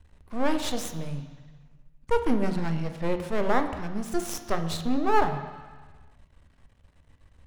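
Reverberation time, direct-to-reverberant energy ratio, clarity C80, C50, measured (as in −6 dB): 1.3 s, 6.5 dB, 11.0 dB, 9.0 dB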